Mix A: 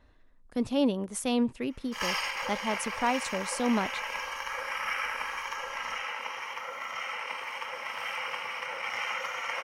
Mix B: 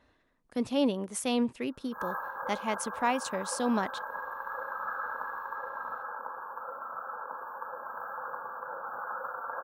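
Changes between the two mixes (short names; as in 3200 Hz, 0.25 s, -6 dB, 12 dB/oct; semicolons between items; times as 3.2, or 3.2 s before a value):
background: add brick-wall FIR band-stop 1700–13000 Hz; master: add HPF 170 Hz 6 dB/oct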